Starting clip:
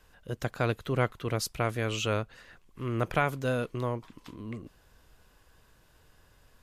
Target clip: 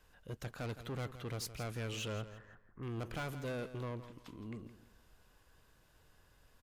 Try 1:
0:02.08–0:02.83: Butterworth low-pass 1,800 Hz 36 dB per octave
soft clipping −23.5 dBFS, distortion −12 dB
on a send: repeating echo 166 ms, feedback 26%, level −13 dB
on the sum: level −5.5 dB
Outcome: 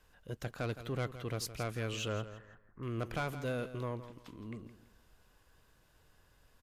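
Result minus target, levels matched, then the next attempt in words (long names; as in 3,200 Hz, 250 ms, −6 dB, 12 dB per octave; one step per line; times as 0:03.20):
soft clipping: distortion −6 dB
0:02.08–0:02.83: Butterworth low-pass 1,800 Hz 36 dB per octave
soft clipping −31 dBFS, distortion −7 dB
on a send: repeating echo 166 ms, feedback 26%, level −13 dB
on the sum: level −5.5 dB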